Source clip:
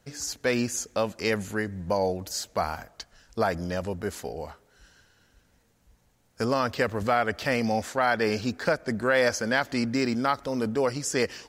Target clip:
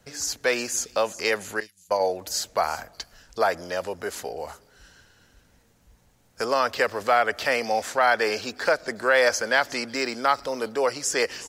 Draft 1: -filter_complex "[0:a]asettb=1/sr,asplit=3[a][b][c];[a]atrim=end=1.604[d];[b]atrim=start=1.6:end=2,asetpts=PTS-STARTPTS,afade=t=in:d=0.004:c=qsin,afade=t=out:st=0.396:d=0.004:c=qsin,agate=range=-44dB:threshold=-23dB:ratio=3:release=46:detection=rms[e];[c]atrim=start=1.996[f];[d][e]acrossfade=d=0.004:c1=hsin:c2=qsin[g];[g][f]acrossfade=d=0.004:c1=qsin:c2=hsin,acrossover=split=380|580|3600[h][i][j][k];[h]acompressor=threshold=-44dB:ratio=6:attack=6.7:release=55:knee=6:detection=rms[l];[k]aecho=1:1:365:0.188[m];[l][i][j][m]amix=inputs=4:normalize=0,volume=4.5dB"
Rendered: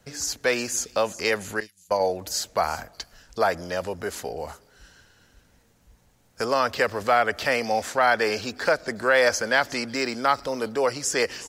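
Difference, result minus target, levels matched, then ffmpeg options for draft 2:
compressor: peak gain reduction -7 dB
-filter_complex "[0:a]asettb=1/sr,asplit=3[a][b][c];[a]atrim=end=1.604[d];[b]atrim=start=1.6:end=2,asetpts=PTS-STARTPTS,afade=t=in:d=0.004:c=qsin,afade=t=out:st=0.396:d=0.004:c=qsin,agate=range=-44dB:threshold=-23dB:ratio=3:release=46:detection=rms[e];[c]atrim=start=1.996[f];[d][e]acrossfade=d=0.004:c1=hsin:c2=qsin[g];[g][f]acrossfade=d=0.004:c1=qsin:c2=hsin,acrossover=split=380|580|3600[h][i][j][k];[h]acompressor=threshold=-52.5dB:ratio=6:attack=6.7:release=55:knee=6:detection=rms[l];[k]aecho=1:1:365:0.188[m];[l][i][j][m]amix=inputs=4:normalize=0,volume=4.5dB"

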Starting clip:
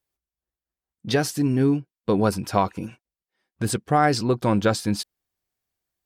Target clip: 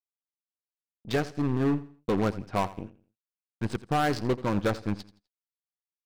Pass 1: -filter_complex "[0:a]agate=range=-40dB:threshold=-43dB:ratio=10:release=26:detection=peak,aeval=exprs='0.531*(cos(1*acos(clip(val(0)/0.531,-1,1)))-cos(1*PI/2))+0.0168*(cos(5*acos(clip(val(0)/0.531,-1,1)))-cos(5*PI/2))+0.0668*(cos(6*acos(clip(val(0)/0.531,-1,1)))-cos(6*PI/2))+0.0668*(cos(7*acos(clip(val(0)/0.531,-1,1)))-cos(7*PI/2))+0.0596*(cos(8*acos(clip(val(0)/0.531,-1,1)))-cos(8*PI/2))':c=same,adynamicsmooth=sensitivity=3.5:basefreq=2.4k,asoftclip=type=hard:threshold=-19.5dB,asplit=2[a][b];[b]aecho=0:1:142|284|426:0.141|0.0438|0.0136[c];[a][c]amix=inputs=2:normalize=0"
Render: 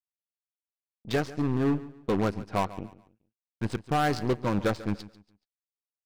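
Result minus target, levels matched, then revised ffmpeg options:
echo 58 ms late
-filter_complex "[0:a]agate=range=-40dB:threshold=-43dB:ratio=10:release=26:detection=peak,aeval=exprs='0.531*(cos(1*acos(clip(val(0)/0.531,-1,1)))-cos(1*PI/2))+0.0168*(cos(5*acos(clip(val(0)/0.531,-1,1)))-cos(5*PI/2))+0.0668*(cos(6*acos(clip(val(0)/0.531,-1,1)))-cos(6*PI/2))+0.0668*(cos(7*acos(clip(val(0)/0.531,-1,1)))-cos(7*PI/2))+0.0596*(cos(8*acos(clip(val(0)/0.531,-1,1)))-cos(8*PI/2))':c=same,adynamicsmooth=sensitivity=3.5:basefreq=2.4k,asoftclip=type=hard:threshold=-19.5dB,asplit=2[a][b];[b]aecho=0:1:84|168|252:0.141|0.0438|0.0136[c];[a][c]amix=inputs=2:normalize=0"

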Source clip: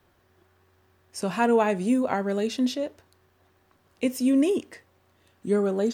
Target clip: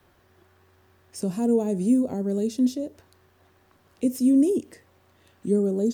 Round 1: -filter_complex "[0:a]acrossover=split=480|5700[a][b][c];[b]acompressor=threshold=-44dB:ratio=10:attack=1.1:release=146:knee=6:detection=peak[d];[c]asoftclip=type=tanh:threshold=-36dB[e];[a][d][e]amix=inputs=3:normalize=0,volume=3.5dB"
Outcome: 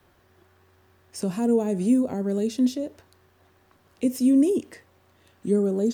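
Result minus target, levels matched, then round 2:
compressor: peak gain reduction -7 dB
-filter_complex "[0:a]acrossover=split=480|5700[a][b][c];[b]acompressor=threshold=-52dB:ratio=10:attack=1.1:release=146:knee=6:detection=peak[d];[c]asoftclip=type=tanh:threshold=-36dB[e];[a][d][e]amix=inputs=3:normalize=0,volume=3.5dB"

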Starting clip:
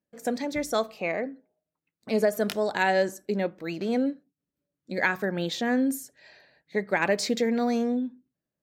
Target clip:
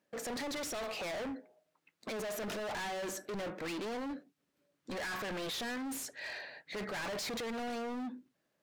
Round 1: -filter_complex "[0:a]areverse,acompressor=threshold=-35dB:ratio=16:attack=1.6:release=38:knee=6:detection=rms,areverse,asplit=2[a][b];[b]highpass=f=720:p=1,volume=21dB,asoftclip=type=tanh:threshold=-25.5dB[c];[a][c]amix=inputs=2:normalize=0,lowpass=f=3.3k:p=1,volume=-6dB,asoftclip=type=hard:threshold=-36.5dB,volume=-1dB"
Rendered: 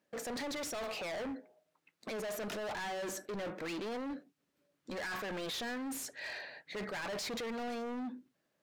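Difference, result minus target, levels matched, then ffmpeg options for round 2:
compressor: peak gain reduction +9.5 dB
-filter_complex "[0:a]areverse,acompressor=threshold=-25dB:ratio=16:attack=1.6:release=38:knee=6:detection=rms,areverse,asplit=2[a][b];[b]highpass=f=720:p=1,volume=21dB,asoftclip=type=tanh:threshold=-25.5dB[c];[a][c]amix=inputs=2:normalize=0,lowpass=f=3.3k:p=1,volume=-6dB,asoftclip=type=hard:threshold=-36.5dB,volume=-1dB"

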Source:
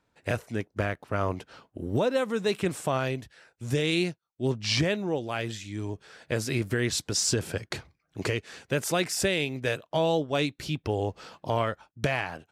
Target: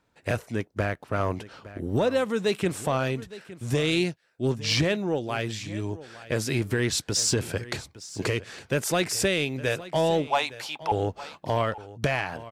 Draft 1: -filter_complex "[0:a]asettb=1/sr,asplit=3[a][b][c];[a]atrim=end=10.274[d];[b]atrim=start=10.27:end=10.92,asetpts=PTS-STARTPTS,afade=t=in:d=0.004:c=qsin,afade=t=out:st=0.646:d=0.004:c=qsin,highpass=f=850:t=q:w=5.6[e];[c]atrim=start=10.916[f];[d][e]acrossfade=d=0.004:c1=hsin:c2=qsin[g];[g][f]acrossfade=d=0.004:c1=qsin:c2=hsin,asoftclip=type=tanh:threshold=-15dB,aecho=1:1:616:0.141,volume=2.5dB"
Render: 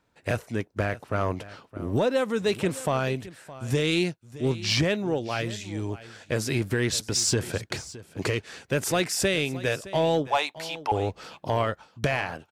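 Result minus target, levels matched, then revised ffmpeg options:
echo 0.246 s early
-filter_complex "[0:a]asettb=1/sr,asplit=3[a][b][c];[a]atrim=end=10.274[d];[b]atrim=start=10.27:end=10.92,asetpts=PTS-STARTPTS,afade=t=in:d=0.004:c=qsin,afade=t=out:st=0.646:d=0.004:c=qsin,highpass=f=850:t=q:w=5.6[e];[c]atrim=start=10.916[f];[d][e]acrossfade=d=0.004:c1=hsin:c2=qsin[g];[g][f]acrossfade=d=0.004:c1=qsin:c2=hsin,asoftclip=type=tanh:threshold=-15dB,aecho=1:1:862:0.141,volume=2.5dB"

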